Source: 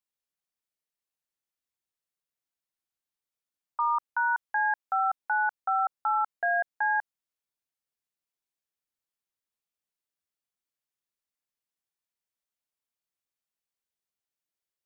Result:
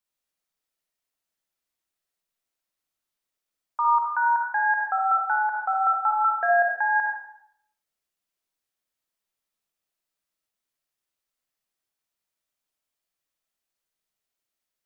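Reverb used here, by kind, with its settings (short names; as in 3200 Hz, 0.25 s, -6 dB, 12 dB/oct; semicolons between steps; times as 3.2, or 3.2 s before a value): digital reverb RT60 0.71 s, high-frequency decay 0.85×, pre-delay 15 ms, DRR -1 dB; gain +2.5 dB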